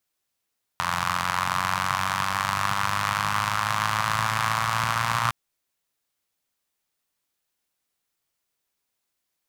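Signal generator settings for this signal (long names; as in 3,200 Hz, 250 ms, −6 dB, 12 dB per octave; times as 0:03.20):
pulse-train model of a four-cylinder engine, changing speed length 4.51 s, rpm 2,600, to 3,500, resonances 130/1,100 Hz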